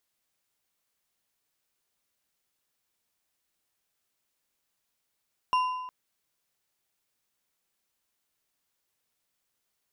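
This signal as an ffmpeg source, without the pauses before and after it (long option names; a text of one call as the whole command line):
ffmpeg -f lavfi -i "aevalsrc='0.1*pow(10,-3*t/1.17)*sin(2*PI*1010*t)+0.0299*pow(10,-3*t/0.863)*sin(2*PI*2784.6*t)+0.00891*pow(10,-3*t/0.705)*sin(2*PI*5458*t)+0.00266*pow(10,-3*t/0.607)*sin(2*PI*9022.3*t)+0.000794*pow(10,-3*t/0.538)*sin(2*PI*13473.4*t)':duration=0.36:sample_rate=44100" out.wav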